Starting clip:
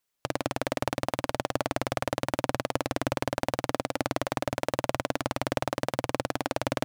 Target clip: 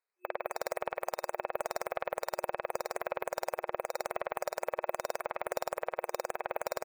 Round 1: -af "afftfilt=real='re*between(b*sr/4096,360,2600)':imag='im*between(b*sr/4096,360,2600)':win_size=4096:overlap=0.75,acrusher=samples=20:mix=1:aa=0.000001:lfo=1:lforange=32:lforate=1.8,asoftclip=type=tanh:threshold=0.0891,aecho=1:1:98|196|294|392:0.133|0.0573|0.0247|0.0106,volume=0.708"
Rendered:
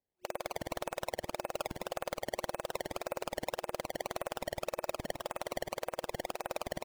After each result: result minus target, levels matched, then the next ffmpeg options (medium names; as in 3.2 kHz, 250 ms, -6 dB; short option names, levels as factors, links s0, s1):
decimation with a swept rate: distortion +16 dB; saturation: distortion +8 dB
-af "afftfilt=real='re*between(b*sr/4096,360,2600)':imag='im*between(b*sr/4096,360,2600)':win_size=4096:overlap=0.75,acrusher=samples=4:mix=1:aa=0.000001:lfo=1:lforange=6.4:lforate=1.8,asoftclip=type=tanh:threshold=0.0891,aecho=1:1:98|196|294|392:0.133|0.0573|0.0247|0.0106,volume=0.708"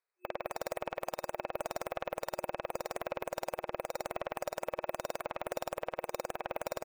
saturation: distortion +8 dB
-af "afftfilt=real='re*between(b*sr/4096,360,2600)':imag='im*between(b*sr/4096,360,2600)':win_size=4096:overlap=0.75,acrusher=samples=4:mix=1:aa=0.000001:lfo=1:lforange=6.4:lforate=1.8,asoftclip=type=tanh:threshold=0.2,aecho=1:1:98|196|294|392:0.133|0.0573|0.0247|0.0106,volume=0.708"